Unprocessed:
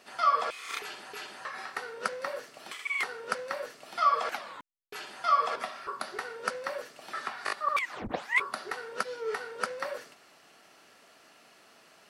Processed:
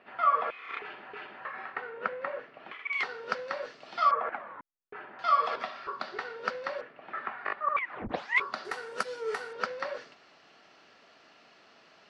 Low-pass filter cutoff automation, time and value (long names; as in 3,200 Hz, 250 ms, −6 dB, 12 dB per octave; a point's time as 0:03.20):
low-pass filter 24 dB per octave
2,600 Hz
from 0:02.93 5,000 Hz
from 0:04.11 1,900 Hz
from 0:05.19 4,700 Hz
from 0:06.81 2,400 Hz
from 0:08.09 5,500 Hz
from 0:08.65 10,000 Hz
from 0:09.53 5,200 Hz